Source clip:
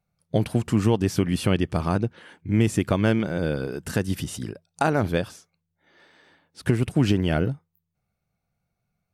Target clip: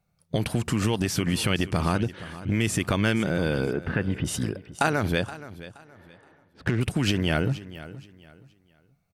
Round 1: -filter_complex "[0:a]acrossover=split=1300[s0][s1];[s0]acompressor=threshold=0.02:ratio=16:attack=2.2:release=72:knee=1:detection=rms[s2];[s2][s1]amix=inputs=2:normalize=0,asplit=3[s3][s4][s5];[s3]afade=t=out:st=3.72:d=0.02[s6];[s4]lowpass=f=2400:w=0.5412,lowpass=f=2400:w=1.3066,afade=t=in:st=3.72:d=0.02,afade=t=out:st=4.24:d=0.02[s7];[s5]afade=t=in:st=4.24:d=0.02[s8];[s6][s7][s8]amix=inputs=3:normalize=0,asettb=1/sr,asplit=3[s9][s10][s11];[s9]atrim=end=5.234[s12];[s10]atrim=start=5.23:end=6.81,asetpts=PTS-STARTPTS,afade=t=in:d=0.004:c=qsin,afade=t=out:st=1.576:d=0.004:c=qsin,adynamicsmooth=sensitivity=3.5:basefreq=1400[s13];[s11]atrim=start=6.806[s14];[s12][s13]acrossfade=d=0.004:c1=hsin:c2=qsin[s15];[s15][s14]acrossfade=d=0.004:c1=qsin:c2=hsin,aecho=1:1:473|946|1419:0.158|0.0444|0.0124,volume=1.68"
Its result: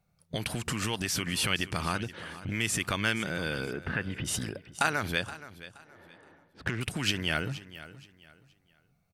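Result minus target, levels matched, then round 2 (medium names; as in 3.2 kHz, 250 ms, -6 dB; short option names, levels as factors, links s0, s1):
compression: peak gain reduction +10 dB
-filter_complex "[0:a]acrossover=split=1300[s0][s1];[s0]acompressor=threshold=0.0668:ratio=16:attack=2.2:release=72:knee=1:detection=rms[s2];[s2][s1]amix=inputs=2:normalize=0,asplit=3[s3][s4][s5];[s3]afade=t=out:st=3.72:d=0.02[s6];[s4]lowpass=f=2400:w=0.5412,lowpass=f=2400:w=1.3066,afade=t=in:st=3.72:d=0.02,afade=t=out:st=4.24:d=0.02[s7];[s5]afade=t=in:st=4.24:d=0.02[s8];[s6][s7][s8]amix=inputs=3:normalize=0,asettb=1/sr,asplit=3[s9][s10][s11];[s9]atrim=end=5.234[s12];[s10]atrim=start=5.23:end=6.81,asetpts=PTS-STARTPTS,afade=t=in:d=0.004:c=qsin,afade=t=out:st=1.576:d=0.004:c=qsin,adynamicsmooth=sensitivity=3.5:basefreq=1400[s13];[s11]atrim=start=6.806[s14];[s12][s13]acrossfade=d=0.004:c1=hsin:c2=qsin[s15];[s15][s14]acrossfade=d=0.004:c1=qsin:c2=hsin,aecho=1:1:473|946|1419:0.158|0.0444|0.0124,volume=1.68"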